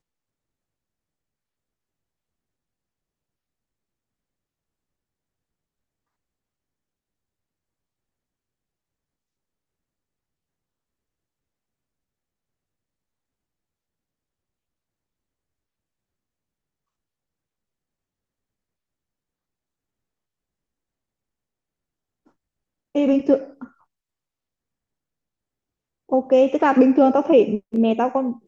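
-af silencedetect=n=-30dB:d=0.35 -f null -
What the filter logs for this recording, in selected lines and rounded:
silence_start: 0.00
silence_end: 22.95 | silence_duration: 22.95
silence_start: 23.64
silence_end: 26.12 | silence_duration: 2.47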